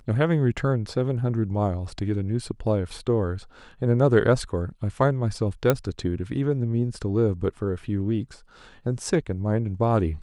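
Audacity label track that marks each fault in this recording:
5.700000	5.700000	pop -6 dBFS

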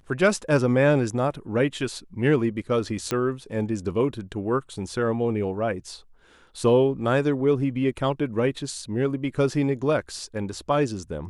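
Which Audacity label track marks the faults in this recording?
3.110000	3.110000	pop -11 dBFS

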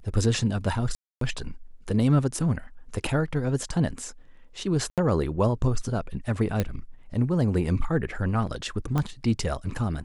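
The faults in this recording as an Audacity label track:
0.950000	1.210000	dropout 263 ms
4.900000	4.980000	dropout 77 ms
6.600000	6.600000	pop -11 dBFS
8.980000	8.980000	pop -14 dBFS

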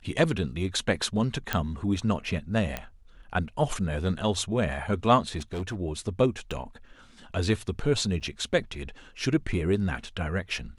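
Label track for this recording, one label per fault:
1.530000	1.530000	pop -10 dBFS
2.770000	2.770000	pop -15 dBFS
5.380000	5.800000	clipped -28.5 dBFS
6.510000	6.510000	dropout 2.4 ms
8.200000	8.210000	dropout 7.3 ms

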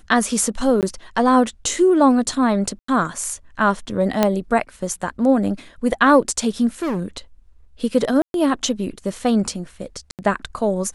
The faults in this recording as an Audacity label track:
0.810000	0.830000	dropout 18 ms
2.790000	2.880000	dropout 94 ms
4.230000	4.230000	pop -2 dBFS
6.820000	7.060000	clipped -19.5 dBFS
8.220000	8.340000	dropout 122 ms
10.110000	10.190000	dropout 78 ms

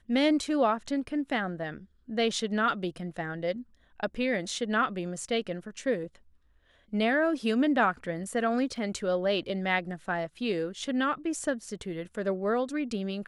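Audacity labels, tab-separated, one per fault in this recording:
8.760000	8.760000	dropout 2.1 ms

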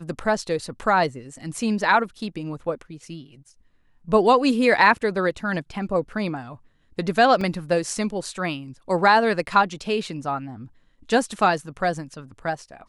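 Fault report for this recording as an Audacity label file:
7.410000	7.410000	dropout 3.4 ms

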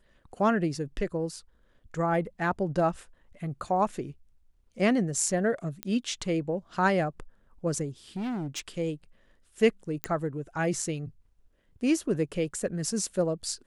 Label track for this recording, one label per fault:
5.830000	5.830000	pop -15 dBFS
8.160000	8.600000	clipped -29.5 dBFS
10.040000	10.040000	pop -12 dBFS

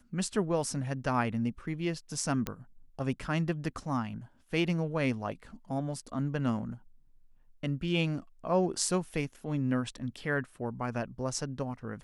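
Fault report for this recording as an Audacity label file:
2.470000	2.470000	pop -17 dBFS

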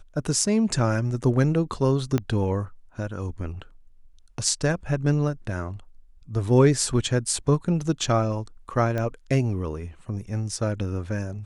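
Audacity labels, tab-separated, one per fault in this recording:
2.180000	2.180000	pop -12 dBFS
8.980000	8.980000	pop -16 dBFS

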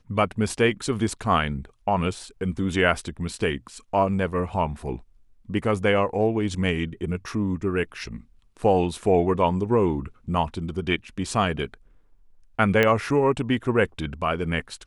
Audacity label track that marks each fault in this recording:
12.830000	12.830000	pop -8 dBFS

